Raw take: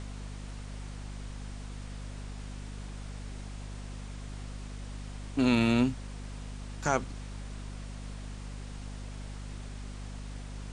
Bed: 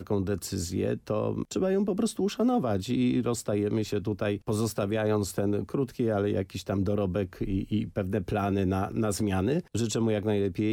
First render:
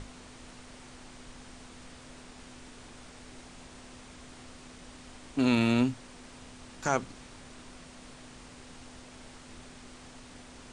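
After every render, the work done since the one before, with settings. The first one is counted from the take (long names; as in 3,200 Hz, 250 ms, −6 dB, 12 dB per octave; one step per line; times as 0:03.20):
mains-hum notches 50/100/150/200 Hz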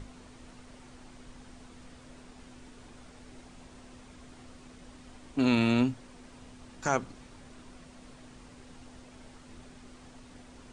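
broadband denoise 6 dB, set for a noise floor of −50 dBFS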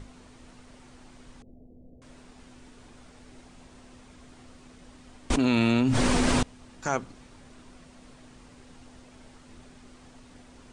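0:01.42–0:02.02: Butterworth low-pass 650 Hz 48 dB per octave
0:05.30–0:06.43: envelope flattener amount 100%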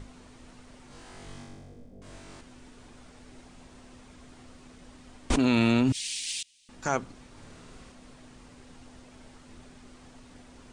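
0:00.88–0:02.41: flutter between parallel walls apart 3.6 metres, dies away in 1.2 s
0:05.92–0:06.69: inverse Chebyshev high-pass filter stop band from 1,400 Hz
0:07.31–0:07.92: flutter between parallel walls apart 9.1 metres, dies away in 1 s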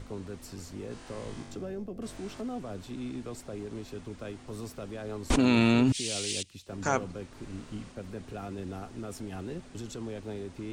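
mix in bed −12 dB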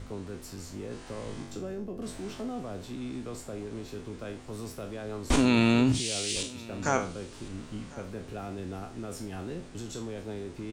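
peak hold with a decay on every bin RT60 0.38 s
single-tap delay 1,054 ms −21.5 dB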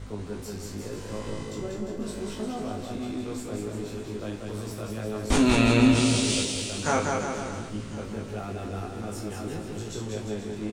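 double-tracking delay 19 ms −2 dB
bouncing-ball delay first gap 190 ms, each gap 0.85×, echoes 5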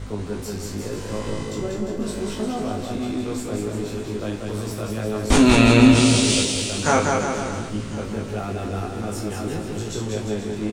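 level +6.5 dB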